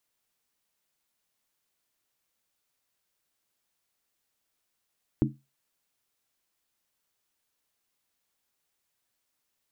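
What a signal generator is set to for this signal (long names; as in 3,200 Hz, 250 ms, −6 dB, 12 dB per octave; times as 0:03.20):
struck skin, lowest mode 137 Hz, modes 4, decay 0.26 s, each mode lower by 0 dB, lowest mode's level −22 dB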